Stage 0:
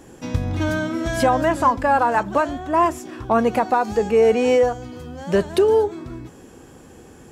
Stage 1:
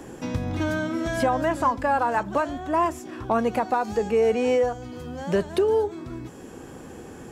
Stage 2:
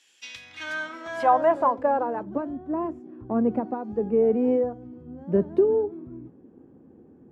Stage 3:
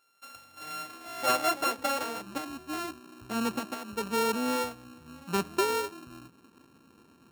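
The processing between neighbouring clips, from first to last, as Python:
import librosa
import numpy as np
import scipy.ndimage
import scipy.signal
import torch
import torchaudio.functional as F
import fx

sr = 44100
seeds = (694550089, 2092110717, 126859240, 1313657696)

y1 = fx.band_squash(x, sr, depth_pct=40)
y1 = y1 * 10.0 ** (-5.0 / 20.0)
y2 = fx.filter_sweep_bandpass(y1, sr, from_hz=3000.0, to_hz=260.0, start_s=0.18, end_s=2.39, q=1.5)
y2 = fx.band_widen(y2, sr, depth_pct=70)
y2 = y2 * 10.0 ** (4.5 / 20.0)
y3 = np.r_[np.sort(y2[:len(y2) // 32 * 32].reshape(-1, 32), axis=1).ravel(), y2[len(y2) // 32 * 32:]]
y3 = y3 * 10.0 ** (-7.5 / 20.0)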